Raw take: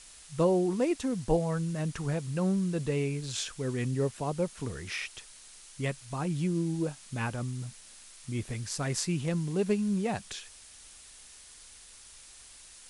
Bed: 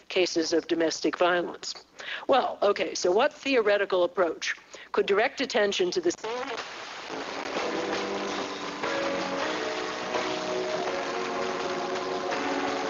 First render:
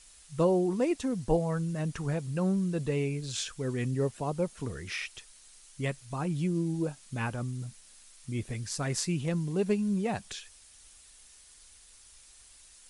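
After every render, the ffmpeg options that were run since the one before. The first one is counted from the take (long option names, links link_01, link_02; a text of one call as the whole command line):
ffmpeg -i in.wav -af "afftdn=noise_reduction=6:noise_floor=-52" out.wav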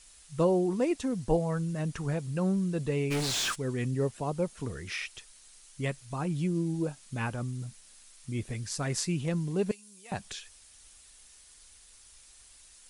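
ffmpeg -i in.wav -filter_complex "[0:a]asplit=3[link_01][link_02][link_03];[link_01]afade=type=out:start_time=3.1:duration=0.02[link_04];[link_02]asplit=2[link_05][link_06];[link_06]highpass=frequency=720:poles=1,volume=34dB,asoftclip=type=tanh:threshold=-22dB[link_07];[link_05][link_07]amix=inputs=2:normalize=0,lowpass=frequency=4700:poles=1,volume=-6dB,afade=type=in:start_time=3.1:duration=0.02,afade=type=out:start_time=3.54:duration=0.02[link_08];[link_03]afade=type=in:start_time=3.54:duration=0.02[link_09];[link_04][link_08][link_09]amix=inputs=3:normalize=0,asettb=1/sr,asplit=3[link_10][link_11][link_12];[link_10]atrim=end=9.714[link_13];[link_11]atrim=start=9.71:end=10.12,asetpts=PTS-STARTPTS,afade=type=in:duration=0.004:curve=qsin,afade=type=out:start_time=0.406:duration=0.004:curve=qsin,aderivative[link_14];[link_12]atrim=start=10.116[link_15];[link_13][link_14]acrossfade=duration=0.004:curve1=hsin:curve2=qsin[link_16];[link_16][link_15]acrossfade=duration=0.004:curve1=qsin:curve2=hsin" out.wav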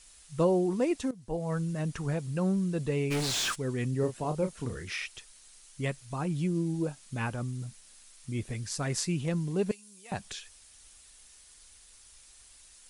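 ffmpeg -i in.wav -filter_complex "[0:a]asettb=1/sr,asplit=3[link_01][link_02][link_03];[link_01]atrim=end=4.004[link_04];[link_02]atrim=start=4:end=4.85,asetpts=PTS-STARTPTS,afade=type=in:duration=0.004:curve=qsin,afade=type=out:start_time=0.846:duration=0.004:curve=qsin,asplit=2[link_05][link_06];[link_06]adelay=32,volume=-8dB[link_07];[link_05][link_07]amix=inputs=2:normalize=0,atrim=end_sample=37485[link_08];[link_03]atrim=start=4.846[link_09];[link_04][link_08]acrossfade=duration=0.004:curve1=hsin:curve2=qsin[link_10];[link_10][link_09]acrossfade=duration=0.004:curve1=qsin:curve2=hsin,asplit=2[link_11][link_12];[link_11]atrim=end=1.11,asetpts=PTS-STARTPTS,afade=type=out:start_time=1.106:duration=0.004:curve=hsin:silence=0.149624[link_13];[link_12]atrim=start=1.11,asetpts=PTS-STARTPTS,afade=type=in:duration=0.42:curve=qua:silence=0.149624[link_14];[link_13][link_14]concat=n=2:v=0:a=1" out.wav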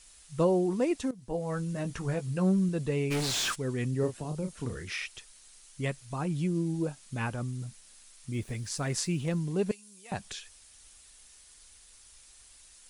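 ffmpeg -i in.wav -filter_complex "[0:a]asettb=1/sr,asplit=3[link_01][link_02][link_03];[link_01]atrim=end=1.174[link_04];[link_02]atrim=start=1.17:end=2.69,asetpts=PTS-STARTPTS,afade=type=in:duration=0.004:curve=qsin,afade=type=out:start_time=1.516:duration=0.004:curve=qsin,asplit=2[link_05][link_06];[link_06]adelay=16,volume=-7.5dB[link_07];[link_05][link_07]amix=inputs=2:normalize=0,atrim=end_sample=67032[link_08];[link_03]atrim=start=2.686[link_09];[link_04][link_08]acrossfade=duration=0.004:curve1=hsin:curve2=qsin[link_10];[link_10][link_09]acrossfade=duration=0.004:curve1=qsin:curve2=hsin,asettb=1/sr,asplit=3[link_11][link_12][link_13];[link_11]atrim=end=4.134[link_14];[link_12]atrim=start=4.13:end=4.56,asetpts=PTS-STARTPTS,afade=type=in:duration=0.004:curve=qsin,afade=type=out:start_time=0.426:duration=0.004:curve=qsin,acrossover=split=290|3000[link_15][link_16][link_17];[link_16]acompressor=threshold=-40dB:ratio=4:attack=3.2:release=140:knee=2.83:detection=peak[link_18];[link_15][link_18][link_17]amix=inputs=3:normalize=0[link_19];[link_13]atrim=start=4.556[link_20];[link_14][link_19]acrossfade=duration=0.004:curve1=hsin:curve2=qsin[link_21];[link_21][link_20]acrossfade=duration=0.004:curve1=qsin:curve2=hsin,asettb=1/sr,asplit=3[link_22][link_23][link_24];[link_22]atrim=end=8.334[link_25];[link_23]atrim=start=8.33:end=9.38,asetpts=PTS-STARTPTS,afade=type=in:duration=0.004:curve=qsin,afade=type=out:start_time=1.046:duration=0.004:curve=qsin,aeval=exprs='val(0)*gte(abs(val(0)),0.00237)':channel_layout=same[link_26];[link_24]atrim=start=9.376[link_27];[link_25][link_26]acrossfade=duration=0.004:curve1=hsin:curve2=qsin[link_28];[link_28][link_27]acrossfade=duration=0.004:curve1=qsin:curve2=hsin" out.wav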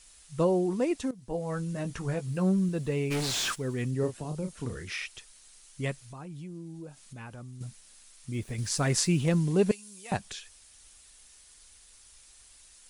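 ffmpeg -i in.wav -filter_complex "[0:a]asettb=1/sr,asplit=3[link_01][link_02][link_03];[link_01]atrim=end=2.284[link_04];[link_02]atrim=start=2.28:end=3.91,asetpts=PTS-STARTPTS,afade=type=in:duration=0.004:curve=qsin,afade=type=out:start_time=1.626:duration=0.004:curve=qsin,aeval=exprs='val(0)*gte(abs(val(0)),0.00237)':channel_layout=same[link_05];[link_03]atrim=start=3.906[link_06];[link_04][link_05]acrossfade=duration=0.004:curve1=hsin:curve2=qsin[link_07];[link_07][link_06]acrossfade=duration=0.004:curve1=qsin:curve2=hsin,asettb=1/sr,asplit=3[link_08][link_09][link_10];[link_08]atrim=end=6.044[link_11];[link_09]atrim=start=6.04:end=7.61,asetpts=PTS-STARTPTS,afade=type=in:duration=0.004:curve=qsin,afade=type=out:start_time=1.566:duration=0.004:curve=qsin,acompressor=threshold=-45dB:ratio=2.5:attack=3.2:release=140:knee=1:detection=peak[link_12];[link_10]atrim=start=7.606[link_13];[link_11][link_12]acrossfade=duration=0.004:curve1=hsin:curve2=qsin[link_14];[link_14][link_13]acrossfade=duration=0.004:curve1=qsin:curve2=hsin,asettb=1/sr,asplit=3[link_15][link_16][link_17];[link_15]atrim=end=8.584[link_18];[link_16]atrim=start=8.58:end=10.17,asetpts=PTS-STARTPTS,afade=type=in:duration=0.004:curve=qsin,afade=type=out:start_time=1.586:duration=0.004:curve=qsin,acontrast=31[link_19];[link_17]atrim=start=10.166[link_20];[link_18][link_19]acrossfade=duration=0.004:curve1=hsin:curve2=qsin[link_21];[link_21][link_20]acrossfade=duration=0.004:curve1=qsin:curve2=hsin" out.wav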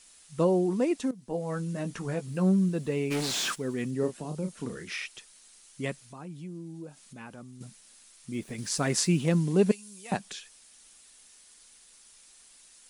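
ffmpeg -i in.wav -af "lowshelf=frequency=130:width_type=q:width=1.5:gain=-11.5" out.wav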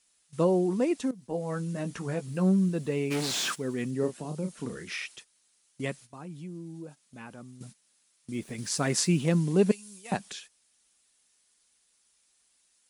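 ffmpeg -i in.wav -af "agate=range=-13dB:threshold=-47dB:ratio=16:detection=peak,highpass=41" out.wav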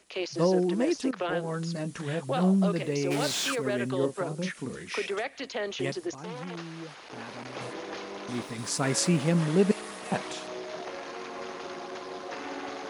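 ffmpeg -i in.wav -i bed.wav -filter_complex "[1:a]volume=-8.5dB[link_01];[0:a][link_01]amix=inputs=2:normalize=0" out.wav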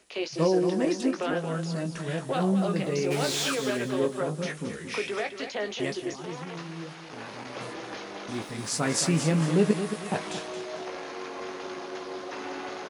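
ffmpeg -i in.wav -filter_complex "[0:a]asplit=2[link_01][link_02];[link_02]adelay=19,volume=-8dB[link_03];[link_01][link_03]amix=inputs=2:normalize=0,aecho=1:1:224|448|672|896:0.335|0.117|0.041|0.0144" out.wav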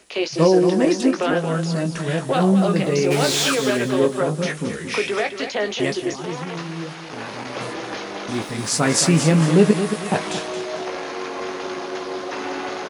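ffmpeg -i in.wav -af "volume=8.5dB,alimiter=limit=-3dB:level=0:latency=1" out.wav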